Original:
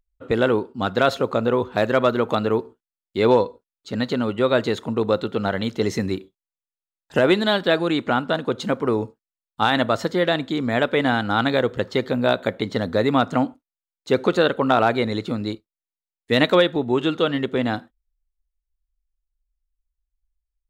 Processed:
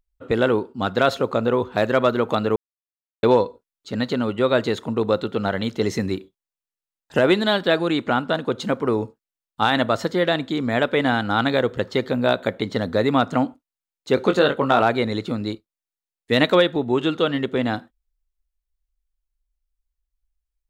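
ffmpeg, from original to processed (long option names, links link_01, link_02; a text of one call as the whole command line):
ffmpeg -i in.wav -filter_complex "[0:a]asettb=1/sr,asplit=3[link_01][link_02][link_03];[link_01]atrim=end=14.154[link_04];[link_02]atrim=start=14.15:end=14.81,asetpts=PTS-STARTPTS,afade=type=in:duration=0.004:curve=qsin,afade=type=out:start_time=0.656:duration=0.004:curve=qsin,asplit=2[link_05][link_06];[link_06]adelay=21,volume=-7dB[link_07];[link_05][link_07]amix=inputs=2:normalize=0,atrim=end_sample=29106[link_08];[link_03]atrim=start=14.806[link_09];[link_04][link_08]acrossfade=duration=0.004:curve1=hsin:curve2=qsin[link_10];[link_10][link_09]acrossfade=duration=0.004:curve1=qsin:curve2=hsin,asplit=3[link_11][link_12][link_13];[link_11]atrim=end=2.56,asetpts=PTS-STARTPTS,afade=type=out:start_time=2.556:duration=0.004:curve=hsin[link_14];[link_12]atrim=start=2.56:end=3.23,asetpts=PTS-STARTPTS,volume=0[link_15];[link_13]atrim=start=3.23,asetpts=PTS-STARTPTS,afade=type=in:duration=0.004:curve=hsin[link_16];[link_14][link_15][link_16]concat=n=3:v=0:a=1" out.wav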